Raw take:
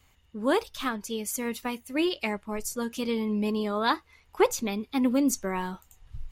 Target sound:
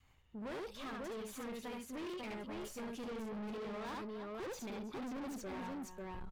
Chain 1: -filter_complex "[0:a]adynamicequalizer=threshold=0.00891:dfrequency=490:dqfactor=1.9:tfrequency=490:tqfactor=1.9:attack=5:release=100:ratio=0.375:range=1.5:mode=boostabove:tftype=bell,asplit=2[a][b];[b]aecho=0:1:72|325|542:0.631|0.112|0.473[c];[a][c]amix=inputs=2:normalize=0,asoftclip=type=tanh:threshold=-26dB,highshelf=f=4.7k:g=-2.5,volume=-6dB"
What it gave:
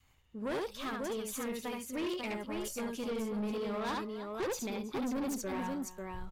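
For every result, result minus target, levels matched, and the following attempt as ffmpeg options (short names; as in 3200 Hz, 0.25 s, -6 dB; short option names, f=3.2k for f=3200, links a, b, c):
8000 Hz band +3.5 dB; soft clip: distortion -5 dB
-filter_complex "[0:a]adynamicequalizer=threshold=0.00891:dfrequency=490:dqfactor=1.9:tfrequency=490:tqfactor=1.9:attack=5:release=100:ratio=0.375:range=1.5:mode=boostabove:tftype=bell,asplit=2[a][b];[b]aecho=0:1:72|325|542:0.631|0.112|0.473[c];[a][c]amix=inputs=2:normalize=0,asoftclip=type=tanh:threshold=-26dB,highshelf=f=4.7k:g=-10.5,volume=-6dB"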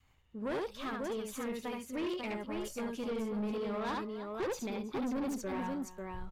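soft clip: distortion -5 dB
-filter_complex "[0:a]adynamicequalizer=threshold=0.00891:dfrequency=490:dqfactor=1.9:tfrequency=490:tqfactor=1.9:attack=5:release=100:ratio=0.375:range=1.5:mode=boostabove:tftype=bell,asplit=2[a][b];[b]aecho=0:1:72|325|542:0.631|0.112|0.473[c];[a][c]amix=inputs=2:normalize=0,asoftclip=type=tanh:threshold=-35.5dB,highshelf=f=4.7k:g=-10.5,volume=-6dB"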